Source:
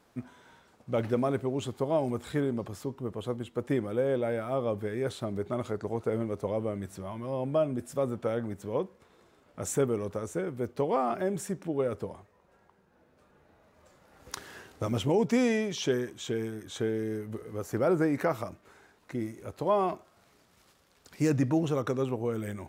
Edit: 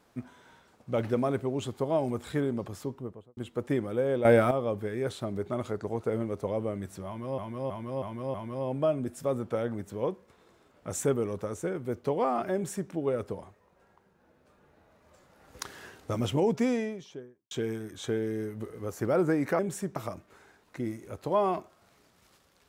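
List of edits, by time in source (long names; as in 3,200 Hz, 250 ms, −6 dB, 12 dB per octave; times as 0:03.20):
0:02.87–0:03.37: fade out and dull
0:04.25–0:04.51: clip gain +11.5 dB
0:07.06–0:07.38: repeat, 5 plays
0:11.26–0:11.63: duplicate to 0:18.31
0:15.06–0:16.23: fade out and dull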